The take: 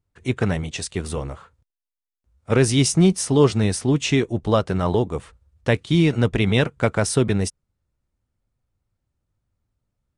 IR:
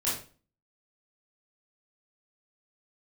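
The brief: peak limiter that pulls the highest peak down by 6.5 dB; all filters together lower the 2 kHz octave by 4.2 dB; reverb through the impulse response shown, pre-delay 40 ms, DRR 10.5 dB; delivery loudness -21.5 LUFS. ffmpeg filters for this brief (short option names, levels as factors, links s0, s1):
-filter_complex "[0:a]equalizer=f=2000:t=o:g=-5.5,alimiter=limit=0.299:level=0:latency=1,asplit=2[s0][s1];[1:a]atrim=start_sample=2205,adelay=40[s2];[s1][s2]afir=irnorm=-1:irlink=0,volume=0.126[s3];[s0][s3]amix=inputs=2:normalize=0,volume=1.12"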